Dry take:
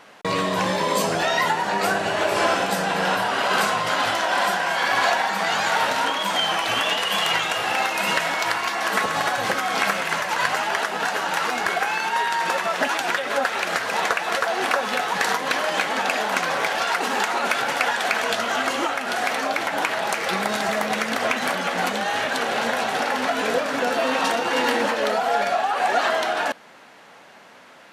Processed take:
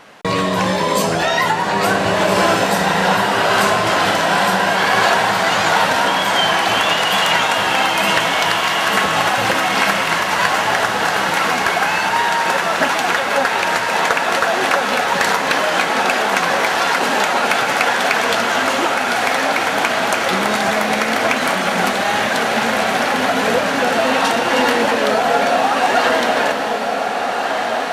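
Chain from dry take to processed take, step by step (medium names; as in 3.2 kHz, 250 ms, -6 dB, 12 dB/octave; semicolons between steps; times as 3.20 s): bass shelf 120 Hz +9 dB; echo that smears into a reverb 1580 ms, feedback 43%, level -3.5 dB; trim +4.5 dB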